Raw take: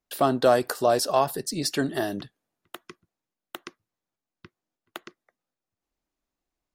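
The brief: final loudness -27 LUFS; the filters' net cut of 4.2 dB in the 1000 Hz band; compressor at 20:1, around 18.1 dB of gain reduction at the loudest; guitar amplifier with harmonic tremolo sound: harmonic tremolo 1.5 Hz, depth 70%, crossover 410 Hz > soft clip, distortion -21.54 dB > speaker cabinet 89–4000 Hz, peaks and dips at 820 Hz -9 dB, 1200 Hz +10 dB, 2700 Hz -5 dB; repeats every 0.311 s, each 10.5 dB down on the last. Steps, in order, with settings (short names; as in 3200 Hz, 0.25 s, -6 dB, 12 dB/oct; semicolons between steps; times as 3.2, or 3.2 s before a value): bell 1000 Hz -7 dB; compressor 20:1, threshold -34 dBFS; feedback echo 0.311 s, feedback 30%, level -10.5 dB; harmonic tremolo 1.5 Hz, depth 70%, crossover 410 Hz; soft clip -27.5 dBFS; speaker cabinet 89–4000 Hz, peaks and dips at 820 Hz -9 dB, 1200 Hz +10 dB, 2700 Hz -5 dB; gain +19.5 dB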